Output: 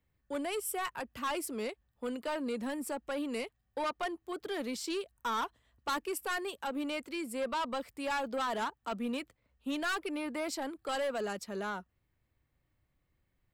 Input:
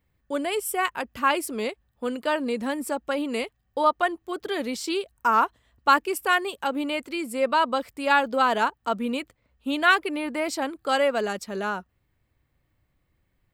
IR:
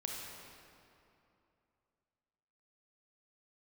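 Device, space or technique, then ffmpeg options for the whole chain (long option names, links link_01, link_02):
one-band saturation: -filter_complex "[0:a]acrossover=split=200|4700[link_01][link_02][link_03];[link_02]asoftclip=type=tanh:threshold=-23.5dB[link_04];[link_01][link_04][link_03]amix=inputs=3:normalize=0,volume=-6.5dB"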